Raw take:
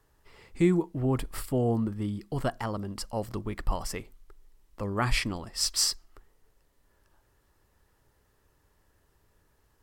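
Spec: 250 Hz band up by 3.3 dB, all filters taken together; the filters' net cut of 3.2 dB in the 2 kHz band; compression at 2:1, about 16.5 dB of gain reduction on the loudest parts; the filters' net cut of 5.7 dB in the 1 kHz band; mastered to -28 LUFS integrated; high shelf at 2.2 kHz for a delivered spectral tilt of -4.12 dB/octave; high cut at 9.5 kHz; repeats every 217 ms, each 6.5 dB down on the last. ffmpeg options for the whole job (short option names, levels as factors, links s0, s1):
-af "lowpass=9500,equalizer=f=250:t=o:g=5,equalizer=f=1000:t=o:g=-8.5,equalizer=f=2000:t=o:g=-7,highshelf=f=2200:g=8.5,acompressor=threshold=0.00398:ratio=2,aecho=1:1:217|434|651|868|1085|1302:0.473|0.222|0.105|0.0491|0.0231|0.0109,volume=4.22"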